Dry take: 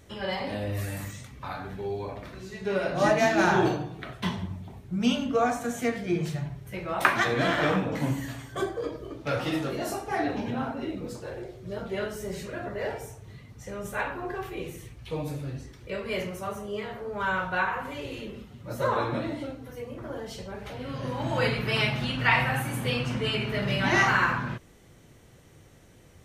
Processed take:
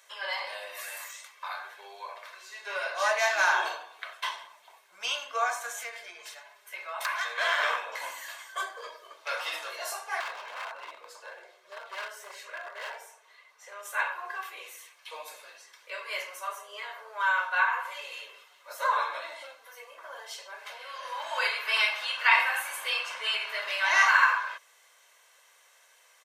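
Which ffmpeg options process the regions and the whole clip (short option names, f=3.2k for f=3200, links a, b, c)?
-filter_complex "[0:a]asettb=1/sr,asplit=3[a][b][c];[a]atrim=end=5.724[d];[b]atrim=start=5.72:end=7.38,asetpts=PTS-STARTPTS,afade=t=in:d=0.004:c=qsin,afade=t=out:st=1.656:d=0.004:c=qsin,acompressor=threshold=-34dB:ratio=2:attack=3.2:release=140:knee=1:detection=peak,aecho=1:1:4.7:0.4,atrim=end_sample=73206,aeval=exprs='0.0708*(abs(mod(val(0)/0.0708+3,4)-2)-1)':c=same[e];[c]atrim=start=7.376[f];[d][e]acrossfade=d=0.004:c1=hsin:c2=qsin[g];[g][f]acrossfade=d=0.004:c1=qsin:c2=hsin,asettb=1/sr,asplit=3[h][i][j];[h]atrim=end=10.204[k];[i]atrim=start=10.2:end=13.83,asetpts=PTS-STARTPTS,afade=t=in:d=0.004:c=qsin,afade=t=out:st=3.626:d=0.004:c=qsin,highshelf=f=3.9k:g=-8,aeval=exprs='0.0355*(abs(mod(val(0)/0.0355+3,4)-2)-1)':c=same[l];[j]atrim=start=13.826[m];[k][l]acrossfade=d=0.004:c1=hsin:c2=qsin[n];[n][m]acrossfade=d=0.004:c1=qsin:c2=hsin,highpass=f=820:w=0.5412,highpass=f=820:w=1.3066,aecho=1:1:1.9:0.45,volume=1.5dB"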